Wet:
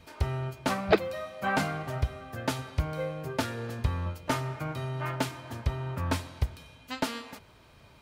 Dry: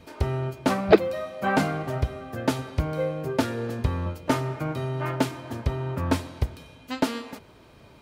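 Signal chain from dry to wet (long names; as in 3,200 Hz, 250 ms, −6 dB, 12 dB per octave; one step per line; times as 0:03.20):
parametric band 330 Hz −7.5 dB 2 octaves
level −1.5 dB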